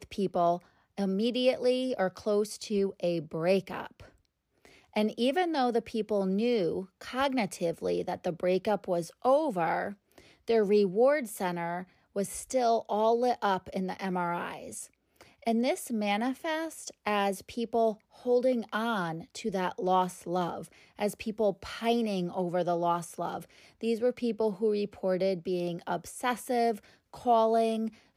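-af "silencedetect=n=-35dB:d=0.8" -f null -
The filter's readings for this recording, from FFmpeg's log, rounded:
silence_start: 3.87
silence_end: 4.96 | silence_duration: 1.10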